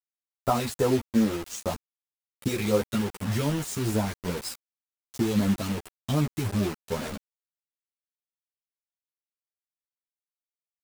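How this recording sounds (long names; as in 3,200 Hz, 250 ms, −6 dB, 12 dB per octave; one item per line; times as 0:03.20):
phaser sweep stages 2, 2.6 Hz, lowest notch 730–3,800 Hz
a quantiser's noise floor 6 bits, dither none
a shimmering, thickened sound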